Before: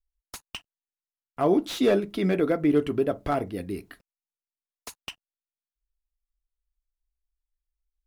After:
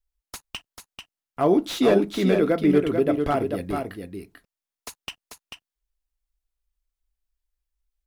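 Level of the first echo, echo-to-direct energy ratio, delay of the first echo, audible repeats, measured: -6.0 dB, -6.0 dB, 441 ms, 1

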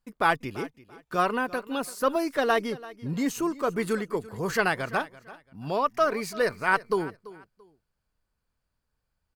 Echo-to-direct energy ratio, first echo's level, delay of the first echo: -18.0 dB, -18.5 dB, 338 ms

